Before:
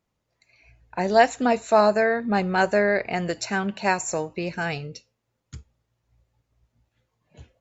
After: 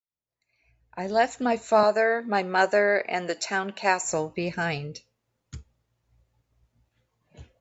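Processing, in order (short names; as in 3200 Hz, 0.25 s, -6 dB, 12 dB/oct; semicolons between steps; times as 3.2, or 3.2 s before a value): opening faded in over 2.26 s; 1.83–4.05 HPF 320 Hz 12 dB/oct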